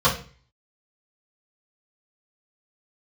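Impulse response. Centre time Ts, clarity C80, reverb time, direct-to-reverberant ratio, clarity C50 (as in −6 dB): 21 ms, 15.0 dB, 0.40 s, −10.0 dB, 9.5 dB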